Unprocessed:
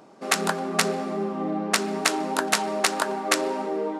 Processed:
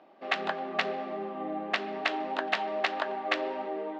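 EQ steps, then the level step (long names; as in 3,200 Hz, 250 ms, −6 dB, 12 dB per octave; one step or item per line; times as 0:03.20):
loudspeaker in its box 440–3,100 Hz, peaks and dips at 450 Hz −10 dB, 980 Hz −8 dB, 1,400 Hz −9 dB, 2,300 Hz −4 dB
0.0 dB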